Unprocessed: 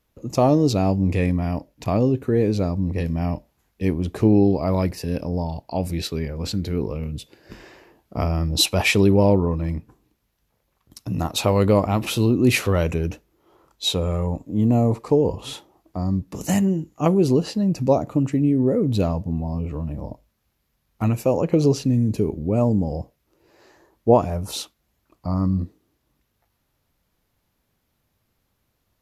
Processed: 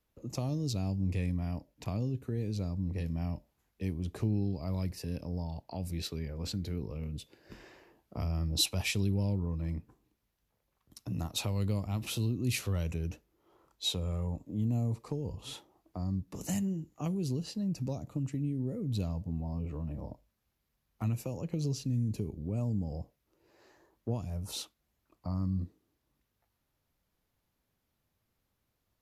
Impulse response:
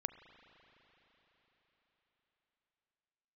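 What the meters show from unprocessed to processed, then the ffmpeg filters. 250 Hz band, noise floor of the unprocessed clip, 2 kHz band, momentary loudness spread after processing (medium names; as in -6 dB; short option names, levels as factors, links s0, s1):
-14.5 dB, -72 dBFS, -15.0 dB, 10 LU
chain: -filter_complex "[0:a]acrossover=split=190|3000[s0][s1][s2];[s1]acompressor=threshold=0.0251:ratio=5[s3];[s0][s3][s2]amix=inputs=3:normalize=0,volume=0.355"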